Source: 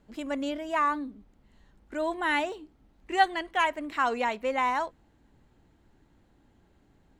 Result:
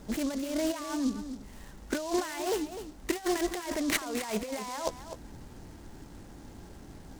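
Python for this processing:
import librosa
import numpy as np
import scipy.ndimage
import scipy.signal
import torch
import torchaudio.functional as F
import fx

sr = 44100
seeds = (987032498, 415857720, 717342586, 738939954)

y = fx.low_shelf(x, sr, hz=380.0, db=-3.5, at=(0.99, 3.33))
y = fx.over_compress(y, sr, threshold_db=-40.0, ratio=-1.0)
y = y + 10.0 ** (-11.0 / 20.0) * np.pad(y, (int(254 * sr / 1000.0), 0))[:len(y)]
y = fx.noise_mod_delay(y, sr, seeds[0], noise_hz=5200.0, depth_ms=0.064)
y = F.gain(torch.from_numpy(y), 6.0).numpy()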